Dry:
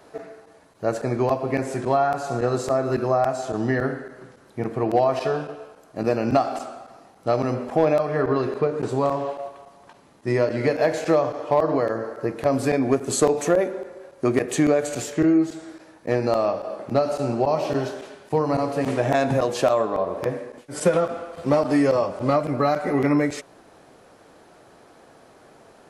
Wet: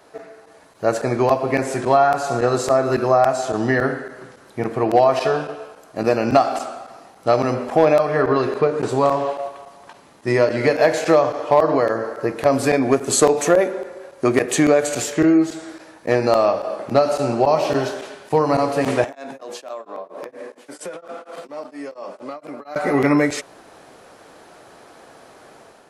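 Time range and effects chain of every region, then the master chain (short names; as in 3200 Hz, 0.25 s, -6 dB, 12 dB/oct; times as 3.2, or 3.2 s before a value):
19.04–22.76 HPF 200 Hz 24 dB/oct + compressor, threshold -33 dBFS + beating tremolo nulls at 4.3 Hz
whole clip: low shelf 400 Hz -6.5 dB; AGC gain up to 6 dB; gain +1.5 dB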